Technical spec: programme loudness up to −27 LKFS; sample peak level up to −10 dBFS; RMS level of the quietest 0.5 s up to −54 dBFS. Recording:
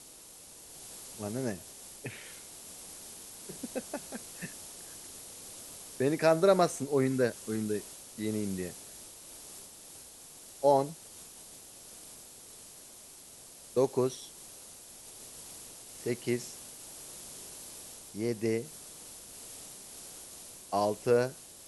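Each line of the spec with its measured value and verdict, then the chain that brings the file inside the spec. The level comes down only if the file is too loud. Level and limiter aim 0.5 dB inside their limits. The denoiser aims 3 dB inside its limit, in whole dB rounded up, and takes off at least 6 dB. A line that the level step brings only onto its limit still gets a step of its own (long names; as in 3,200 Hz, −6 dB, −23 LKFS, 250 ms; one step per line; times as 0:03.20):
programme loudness −33.5 LKFS: in spec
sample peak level −12.0 dBFS: in spec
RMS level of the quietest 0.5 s −52 dBFS: out of spec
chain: broadband denoise 6 dB, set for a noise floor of −52 dBFS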